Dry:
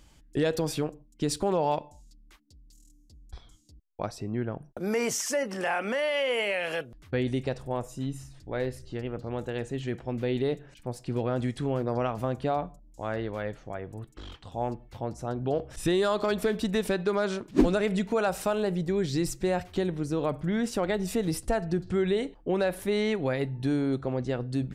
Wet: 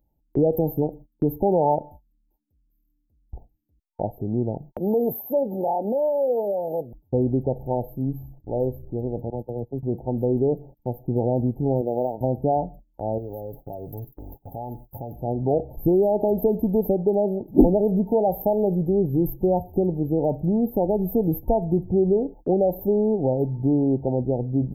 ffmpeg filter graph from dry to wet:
-filter_complex "[0:a]asettb=1/sr,asplit=3[a][b][c];[a]atrim=end=9.304[d];[b]atrim=start=9.3:end=9.83,asetpts=PTS-STARTPTS,afade=t=in:d=0.004:c=qsin,afade=t=out:st=0.526:d=0.004:c=qsin,agate=range=-19dB:threshold=-34dB:ratio=16:release=100:detection=peak,acrossover=split=150|3000[e][f][g];[f]acompressor=threshold=-38dB:ratio=1.5:attack=3.2:release=140:knee=2.83:detection=peak[h];[e][h][g]amix=inputs=3:normalize=0[i];[c]atrim=start=9.826[j];[d][i]acrossfade=d=0.004:c1=hsin:c2=qsin[k];[k][j]acrossfade=d=0.004:c1=qsin:c2=hsin,asettb=1/sr,asplit=3[l][m][n];[l]atrim=end=11.814[o];[m]atrim=start=11.81:end=12.21,asetpts=PTS-STARTPTS,afade=t=in:d=0.004:c=qsin,afade=t=out:st=0.396:d=0.004:c=qsin,bandpass=f=490:t=q:w=0.8,aeval=exprs='sgn(val(0))*max(abs(val(0))-0.00355,0)':c=same[p];[n]atrim=start=12.206[q];[o][p]acrossfade=d=0.004:c1=hsin:c2=qsin[r];[r][q]acrossfade=d=0.004:c1=qsin:c2=hsin,asettb=1/sr,asplit=3[s][t][u];[s]atrim=end=13.184[v];[t]atrim=start=13.18:end=15.16,asetpts=PTS-STARTPTS,afade=t=in:d=0.004:c=qsin,afade=t=out:st=1.976:d=0.004:c=qsin,aemphasis=mode=production:type=75fm,aecho=1:1:7.2:0.37,atrim=end_sample=87318,acompressor=threshold=-36dB:ratio=4:attack=3.2:release=140:knee=1:detection=peak[w];[u]atrim=start=15.156[x];[v][w]acrossfade=d=0.004:c1=hsin:c2=qsin[y];[y][x]acrossfade=d=0.004:c1=qsin:c2=hsin,afftfilt=real='re*(1-between(b*sr/4096,910,12000))':imag='im*(1-between(b*sr/4096,910,12000))':win_size=4096:overlap=0.75,agate=range=-19dB:threshold=-48dB:ratio=16:detection=peak,highshelf=f=8.5k:g=9,volume=6.5dB"

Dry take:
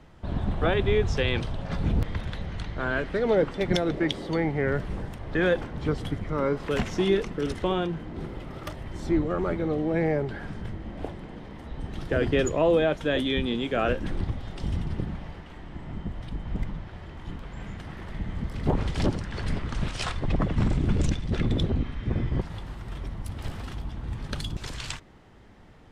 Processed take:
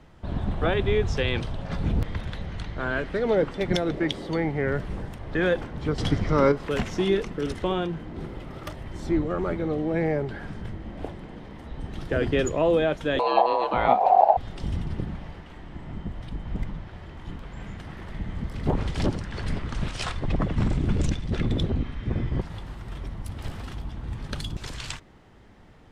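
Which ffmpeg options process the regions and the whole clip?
-filter_complex "[0:a]asettb=1/sr,asplit=3[a][b][c];[a]atrim=end=5.984[d];[b]atrim=start=5.98:end=6.52,asetpts=PTS-STARTPTS,afade=t=in:d=0.004:c=qsin,afade=t=out:st=0.536:d=0.004:c=qsin,lowpass=8.8k,equalizer=f=5.3k:w=1.9:g=9,acontrast=77[e];[c]atrim=start=6.516[f];[d][e]acrossfade=d=0.004:c1=hsin:c2=qsin[g];[g][f]acrossfade=d=0.004:c1=qsin:c2=hsin,asettb=1/sr,asplit=3[h][i][j];[h]atrim=end=13.194[k];[i]atrim=start=13.19:end=14.37,asetpts=PTS-STARTPTS,afade=t=in:d=0.004:c=qsin,afade=t=out:st=1.176:d=0.004:c=qsin,bass=f=250:g=14,treble=f=4k:g=-5,aeval=exprs='val(0)*sin(2*PI*740*n/s)':c=same,lowpass=7.2k[l];[j]atrim=start=14.366[m];[k][l]acrossfade=d=0.004:c1=hsin:c2=qsin[n];[n][m]acrossfade=d=0.004:c1=qsin:c2=hsin"

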